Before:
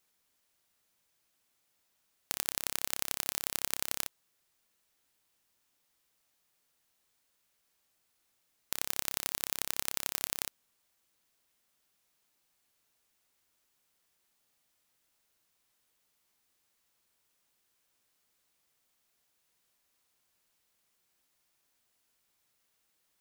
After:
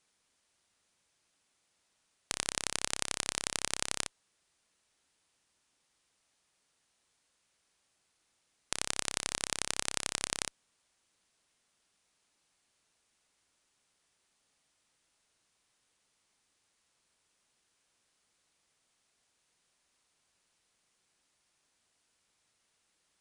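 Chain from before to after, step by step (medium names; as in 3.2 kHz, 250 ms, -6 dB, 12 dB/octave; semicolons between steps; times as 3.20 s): resampled via 22.05 kHz; Chebyshev shaper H 7 -37 dB, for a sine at -8.5 dBFS; trim +3.5 dB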